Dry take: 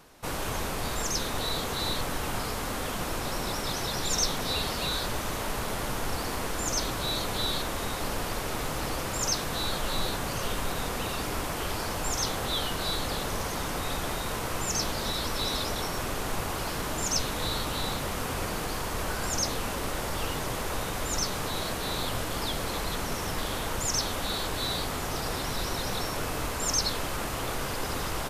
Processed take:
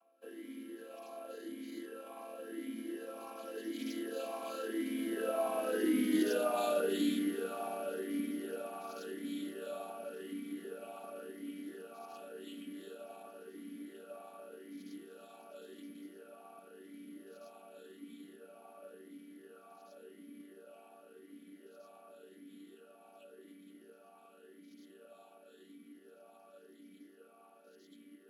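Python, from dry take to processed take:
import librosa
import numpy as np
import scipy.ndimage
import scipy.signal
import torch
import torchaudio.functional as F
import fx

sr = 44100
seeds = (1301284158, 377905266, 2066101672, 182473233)

p1 = fx.chord_vocoder(x, sr, chord='minor triad', root=56)
p2 = fx.doppler_pass(p1, sr, speed_mps=27, closest_m=20.0, pass_at_s=6.22)
p3 = 10.0 ** (-34.5 / 20.0) * np.tanh(p2 / 10.0 ** (-34.5 / 20.0))
p4 = p2 + F.gain(torch.from_numpy(p3), -5.0).numpy()
p5 = (np.kron(p4[::4], np.eye(4)[0]) * 4)[:len(p4)]
p6 = fx.vowel_sweep(p5, sr, vowels='a-i', hz=0.91)
y = F.gain(torch.from_numpy(p6), 9.5).numpy()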